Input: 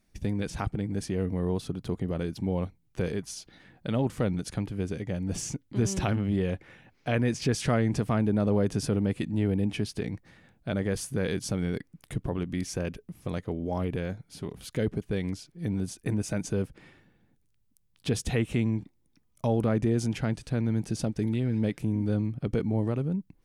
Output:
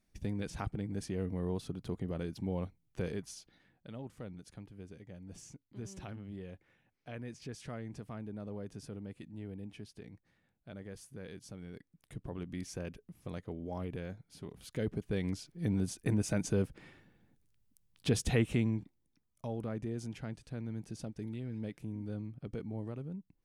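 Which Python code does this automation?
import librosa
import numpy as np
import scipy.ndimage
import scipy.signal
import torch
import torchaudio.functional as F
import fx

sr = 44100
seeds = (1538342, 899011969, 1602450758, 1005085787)

y = fx.gain(x, sr, db=fx.line((3.22, -7.0), (3.93, -18.0), (11.65, -18.0), (12.47, -9.5), (14.5, -9.5), (15.47, -2.0), (18.41, -2.0), (19.47, -13.0)))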